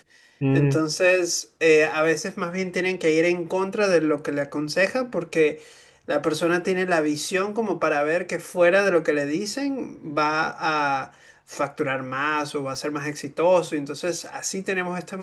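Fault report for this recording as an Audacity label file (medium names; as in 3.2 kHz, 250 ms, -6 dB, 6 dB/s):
12.750000	12.750000	dropout 2.6 ms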